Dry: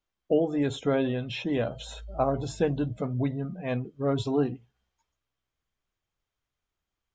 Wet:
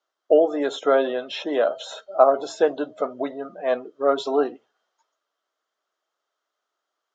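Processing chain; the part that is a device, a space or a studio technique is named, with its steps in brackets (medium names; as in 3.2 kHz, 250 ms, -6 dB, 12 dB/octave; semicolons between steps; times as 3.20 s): phone speaker on a table (cabinet simulation 350–7000 Hz, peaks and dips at 630 Hz +7 dB, 1.3 kHz +8 dB, 2.4 kHz -9 dB); trim +6.5 dB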